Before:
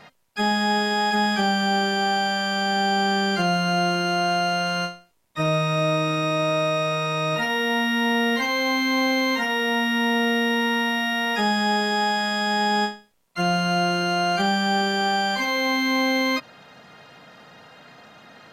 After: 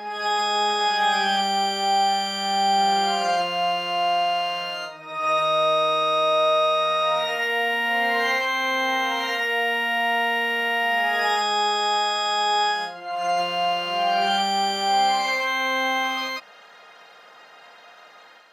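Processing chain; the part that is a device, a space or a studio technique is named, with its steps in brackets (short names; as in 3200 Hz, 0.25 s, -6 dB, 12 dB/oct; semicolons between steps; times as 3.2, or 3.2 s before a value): ghost voice (reverse; reverb RT60 1.7 s, pre-delay 93 ms, DRR -4.5 dB; reverse; HPF 600 Hz 12 dB/oct); gain -4.5 dB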